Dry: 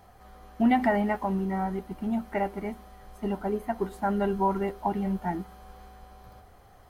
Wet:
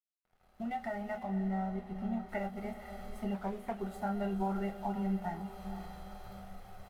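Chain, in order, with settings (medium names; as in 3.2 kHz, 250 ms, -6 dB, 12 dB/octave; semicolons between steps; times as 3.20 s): fade-in on the opening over 2.25 s; comb 1.5 ms, depth 60%; compression 2:1, threshold -43 dBFS, peak gain reduction 12 dB; crossover distortion -59.5 dBFS; 1.23–2.29 s: low-pass 2.9 kHz 6 dB/octave; echo that smears into a reverb 503 ms, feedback 40%, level -10 dB; on a send at -3.5 dB: reverberation, pre-delay 5 ms; 3.34–3.79 s: on the sum: loudspeaker Doppler distortion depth 0.35 ms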